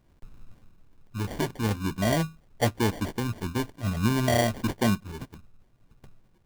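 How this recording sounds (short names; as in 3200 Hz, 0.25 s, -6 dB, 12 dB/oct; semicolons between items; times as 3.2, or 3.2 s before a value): phasing stages 12, 0.52 Hz, lowest notch 580–3600 Hz; aliases and images of a low sample rate 1300 Hz, jitter 0%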